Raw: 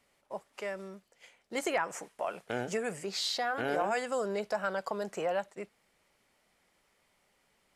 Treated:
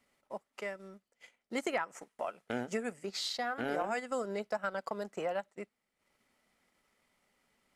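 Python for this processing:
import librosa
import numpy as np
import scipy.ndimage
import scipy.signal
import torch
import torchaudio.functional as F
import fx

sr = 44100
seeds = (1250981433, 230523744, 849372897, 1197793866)

y = fx.transient(x, sr, attack_db=2, sustain_db=-10)
y = fx.small_body(y, sr, hz=(240.0, 1300.0, 2000.0), ring_ms=45, db=7)
y = F.gain(torch.from_numpy(y), -4.0).numpy()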